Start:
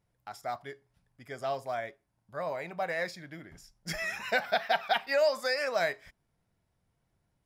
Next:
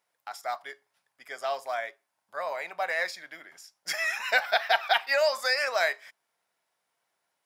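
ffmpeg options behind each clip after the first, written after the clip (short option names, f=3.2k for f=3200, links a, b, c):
-af "highpass=760,volume=6dB"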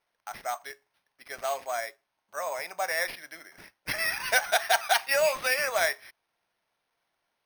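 -af "acrusher=samples=6:mix=1:aa=0.000001"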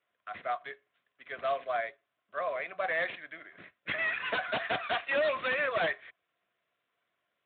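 -af "asuperstop=centerf=860:order=20:qfactor=3.8,aeval=exprs='0.075*(abs(mod(val(0)/0.075+3,4)-2)-1)':c=same" -ar 8000 -c:a libspeex -b:a 18k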